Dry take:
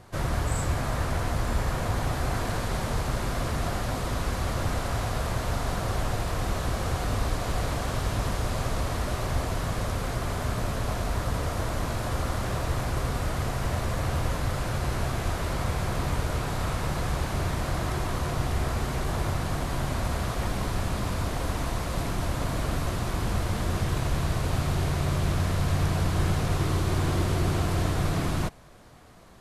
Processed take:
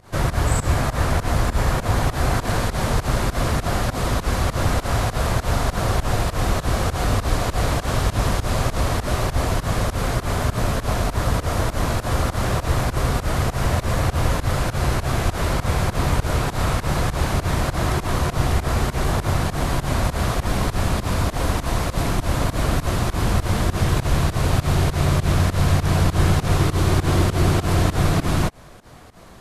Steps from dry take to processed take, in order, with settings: volume shaper 100 bpm, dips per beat 2, -20 dB, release 116 ms; trim +8 dB

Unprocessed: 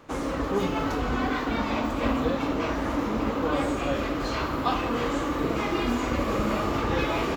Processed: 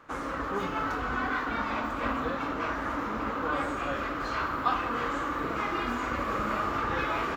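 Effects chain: peaking EQ 1.4 kHz +12 dB 1.2 oct; trim -8.5 dB

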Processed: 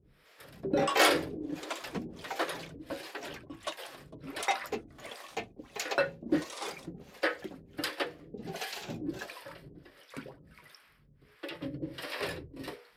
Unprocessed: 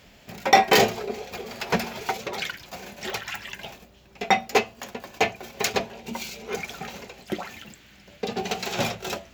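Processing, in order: ever faster or slower copies 183 ms, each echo +6 st, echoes 2; harmonic tremolo 2 Hz, depth 100%, crossover 580 Hz; dynamic bell 460 Hz, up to +5 dB, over -43 dBFS, Q 2.1; tape speed -28%; trim -6.5 dB

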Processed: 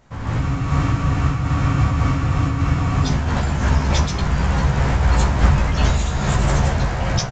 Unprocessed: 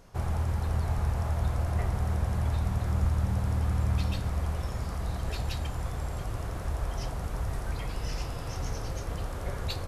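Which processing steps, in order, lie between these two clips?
level rider gain up to 16 dB; peak limiter -9.5 dBFS, peak gain reduction 7 dB; doubling 20 ms -3 dB; speed mistake 33 rpm record played at 45 rpm; resampled via 16 kHz; spectral freeze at 0.42 s, 2.62 s; random flutter of the level, depth 60%; trim +3 dB

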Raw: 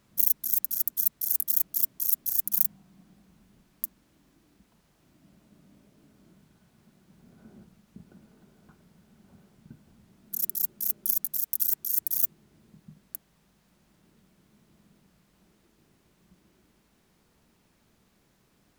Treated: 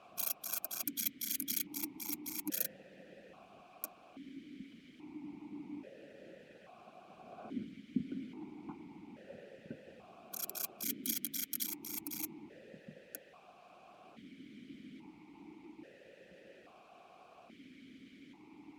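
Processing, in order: harmonic-percussive split percussive +8 dB; stepped vowel filter 1.2 Hz; trim +17.5 dB

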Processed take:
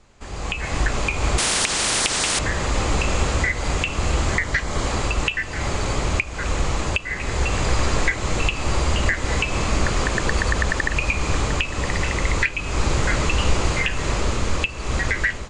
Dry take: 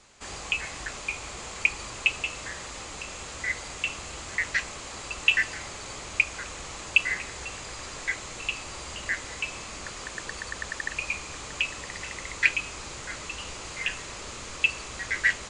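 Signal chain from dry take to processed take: compression 6:1, threshold -33 dBFS, peak gain reduction 18 dB; 4.33–4.86 s: band-stop 2.6 kHz, Q 6.9; level rider gain up to 17 dB; tilt EQ -2.5 dB/octave; 1.38–2.39 s: spectrum-flattening compressor 10:1

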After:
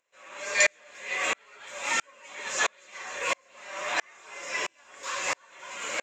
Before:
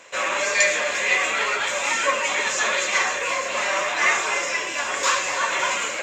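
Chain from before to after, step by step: upward compressor, threshold -38 dBFS; sawtooth tremolo in dB swelling 1.5 Hz, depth 40 dB

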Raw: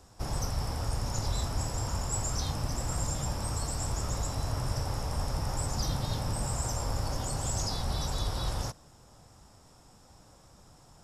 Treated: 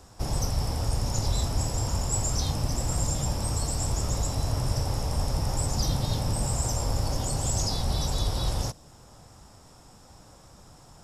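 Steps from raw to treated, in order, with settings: dynamic bell 1.4 kHz, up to -6 dB, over -57 dBFS, Q 1.1; trim +5 dB

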